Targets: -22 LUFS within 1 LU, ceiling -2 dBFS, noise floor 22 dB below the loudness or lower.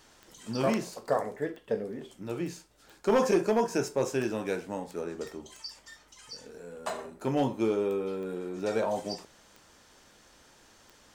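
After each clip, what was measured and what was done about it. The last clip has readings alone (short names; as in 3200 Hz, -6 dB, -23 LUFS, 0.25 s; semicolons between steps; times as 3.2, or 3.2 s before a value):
clicks 9; loudness -31.5 LUFS; peak -15.0 dBFS; loudness target -22.0 LUFS
-> de-click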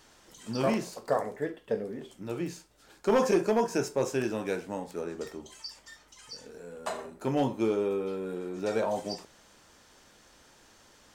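clicks 0; loudness -31.5 LUFS; peak -15.0 dBFS; loudness target -22.0 LUFS
-> gain +9.5 dB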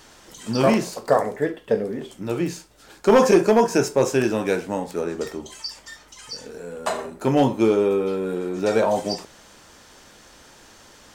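loudness -22.0 LUFS; peak -5.5 dBFS; noise floor -50 dBFS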